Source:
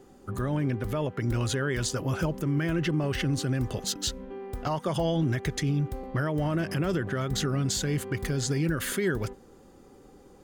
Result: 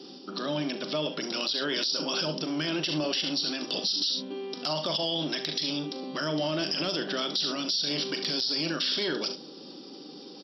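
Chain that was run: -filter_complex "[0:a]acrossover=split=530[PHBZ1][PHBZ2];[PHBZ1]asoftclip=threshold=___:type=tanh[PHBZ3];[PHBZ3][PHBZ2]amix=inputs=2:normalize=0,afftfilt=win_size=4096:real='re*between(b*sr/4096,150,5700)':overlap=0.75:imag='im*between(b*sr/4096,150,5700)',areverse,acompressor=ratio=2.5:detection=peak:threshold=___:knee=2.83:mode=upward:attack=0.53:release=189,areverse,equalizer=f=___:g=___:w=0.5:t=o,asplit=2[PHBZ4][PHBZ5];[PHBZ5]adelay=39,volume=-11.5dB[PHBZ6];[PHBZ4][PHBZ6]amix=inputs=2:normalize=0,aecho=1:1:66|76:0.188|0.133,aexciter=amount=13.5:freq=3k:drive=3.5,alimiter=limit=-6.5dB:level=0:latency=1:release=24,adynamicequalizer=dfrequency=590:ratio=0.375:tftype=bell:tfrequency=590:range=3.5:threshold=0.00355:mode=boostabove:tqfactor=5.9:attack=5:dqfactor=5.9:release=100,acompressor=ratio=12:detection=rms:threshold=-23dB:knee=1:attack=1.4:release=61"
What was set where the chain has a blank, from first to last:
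-34.5dB, -42dB, 300, 9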